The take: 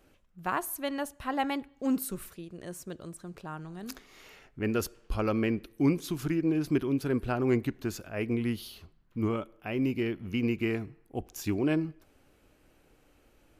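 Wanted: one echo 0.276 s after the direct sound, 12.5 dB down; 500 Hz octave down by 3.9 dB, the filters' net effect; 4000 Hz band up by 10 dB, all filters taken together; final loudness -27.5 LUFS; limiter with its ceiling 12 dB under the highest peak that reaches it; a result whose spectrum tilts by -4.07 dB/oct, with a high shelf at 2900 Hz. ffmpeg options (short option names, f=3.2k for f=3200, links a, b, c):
-af "equalizer=f=500:t=o:g=-6,highshelf=f=2.9k:g=8.5,equalizer=f=4k:t=o:g=7,alimiter=level_in=0.5dB:limit=-24dB:level=0:latency=1,volume=-0.5dB,aecho=1:1:276:0.237,volume=8dB"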